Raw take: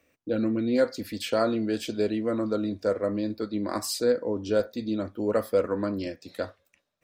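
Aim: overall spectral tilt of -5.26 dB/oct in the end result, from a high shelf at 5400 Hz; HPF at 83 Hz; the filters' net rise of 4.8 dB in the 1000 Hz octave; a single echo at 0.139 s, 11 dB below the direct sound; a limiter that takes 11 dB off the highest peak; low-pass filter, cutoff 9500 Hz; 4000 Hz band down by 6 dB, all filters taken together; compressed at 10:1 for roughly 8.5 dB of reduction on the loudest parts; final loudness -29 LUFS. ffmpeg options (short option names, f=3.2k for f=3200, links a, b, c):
-af "highpass=83,lowpass=9.5k,equalizer=f=1k:t=o:g=7.5,equalizer=f=4k:t=o:g=-4.5,highshelf=f=5.4k:g=-7.5,acompressor=threshold=-25dB:ratio=10,alimiter=level_in=2dB:limit=-24dB:level=0:latency=1,volume=-2dB,aecho=1:1:139:0.282,volume=6dB"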